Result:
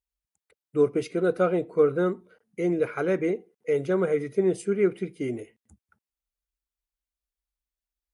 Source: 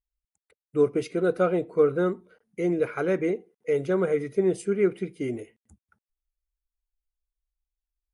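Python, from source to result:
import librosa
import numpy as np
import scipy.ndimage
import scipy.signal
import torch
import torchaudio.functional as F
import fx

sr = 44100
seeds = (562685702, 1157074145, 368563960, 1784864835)

y = scipy.signal.sosfilt(scipy.signal.butter(2, 49.0, 'highpass', fs=sr, output='sos'), x)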